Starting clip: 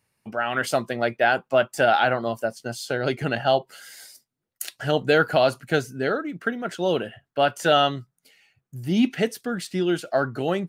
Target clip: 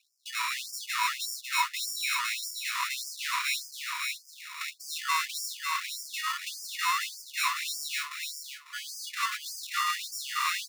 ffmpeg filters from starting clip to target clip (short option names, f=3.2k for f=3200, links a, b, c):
-filter_complex "[0:a]asettb=1/sr,asplit=3[a][b][c];[a]atrim=end=5.594[d];[b]atrim=start=5.59:end=6.14,asetpts=PTS-STARTPTS,afade=t=in:d=0.004:c=qsin,afade=t=out:st=0.546:d=0.004:c=qsin,aderivative[e];[c]atrim=start=6.136[f];[d][e]acrossfade=d=0.004:c1=hsin:c2=qsin[g];[g][f]acrossfade=d=0.004:c1=qsin:c2=hsin,acrusher=samples=28:mix=1:aa=0.000001,asplit=2[h][i];[i]highpass=f=720:p=1,volume=30dB,asoftclip=type=tanh:threshold=-6.5dB[j];[h][j]amix=inputs=2:normalize=0,lowpass=f=5.7k:p=1,volume=-6dB,asplit=2[k][l];[l]aecho=0:1:548|1096|1644:0.631|0.145|0.0334[m];[k][m]amix=inputs=2:normalize=0,afftfilt=real='re*gte(b*sr/1024,920*pow(4700/920,0.5+0.5*sin(2*PI*1.7*pts/sr)))':imag='im*gte(b*sr/1024,920*pow(4700/920,0.5+0.5*sin(2*PI*1.7*pts/sr)))':win_size=1024:overlap=0.75,volume=-7dB"